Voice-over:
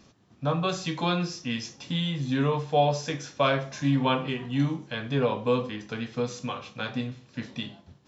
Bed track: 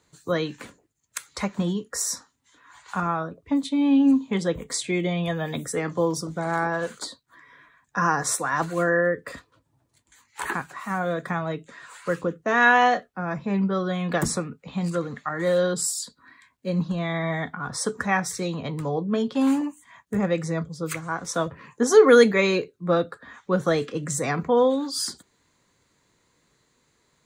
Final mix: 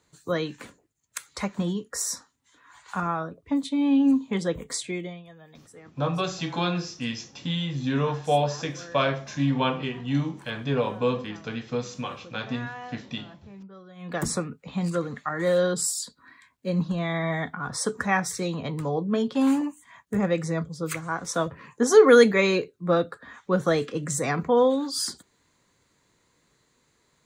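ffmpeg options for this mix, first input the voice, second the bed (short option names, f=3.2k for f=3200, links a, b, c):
-filter_complex "[0:a]adelay=5550,volume=0dB[a];[1:a]volume=19dB,afade=t=out:st=4.72:d=0.51:silence=0.105925,afade=t=in:st=13.95:d=0.42:silence=0.0891251[b];[a][b]amix=inputs=2:normalize=0"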